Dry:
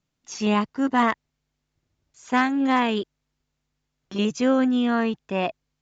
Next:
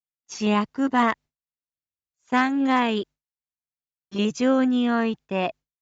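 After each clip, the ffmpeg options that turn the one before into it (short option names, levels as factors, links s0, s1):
-af "agate=range=0.0224:threshold=0.0158:ratio=3:detection=peak"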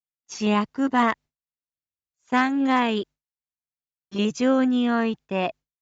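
-af anull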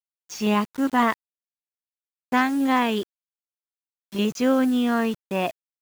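-af "acrusher=bits=6:mix=0:aa=0.000001"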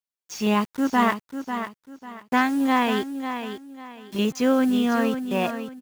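-af "aecho=1:1:545|1090|1635:0.355|0.103|0.0298"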